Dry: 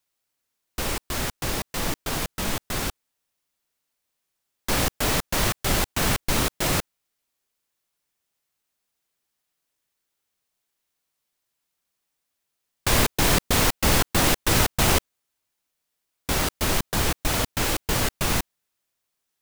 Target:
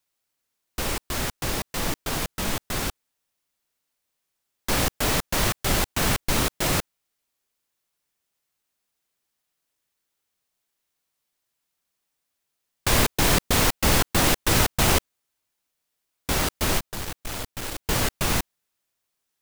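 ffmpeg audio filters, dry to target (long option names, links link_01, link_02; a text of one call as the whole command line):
ffmpeg -i in.wav -filter_complex "[0:a]asplit=3[link_01][link_02][link_03];[link_01]afade=type=out:start_time=16.78:duration=0.02[link_04];[link_02]aeval=exprs='(tanh(31.6*val(0)+0.7)-tanh(0.7))/31.6':channel_layout=same,afade=type=in:start_time=16.78:duration=0.02,afade=type=out:start_time=17.84:duration=0.02[link_05];[link_03]afade=type=in:start_time=17.84:duration=0.02[link_06];[link_04][link_05][link_06]amix=inputs=3:normalize=0" out.wav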